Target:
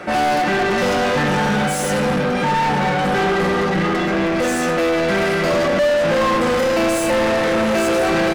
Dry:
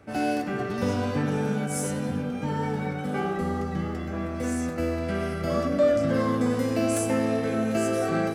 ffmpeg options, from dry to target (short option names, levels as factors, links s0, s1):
-filter_complex "[0:a]aecho=1:1:5.6:0.72,asplit=2[s0][s1];[s1]highpass=f=720:p=1,volume=39.8,asoftclip=type=tanh:threshold=0.299[s2];[s0][s2]amix=inputs=2:normalize=0,lowpass=f=2900:p=1,volume=0.501"